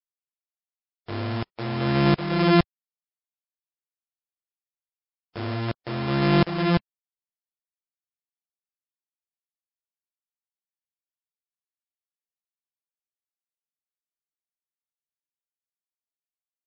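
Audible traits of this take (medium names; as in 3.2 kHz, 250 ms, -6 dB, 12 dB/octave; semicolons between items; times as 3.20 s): a buzz of ramps at a fixed pitch in blocks of 128 samples; tremolo saw up 1.4 Hz, depth 95%; a quantiser's noise floor 6-bit, dither none; MP3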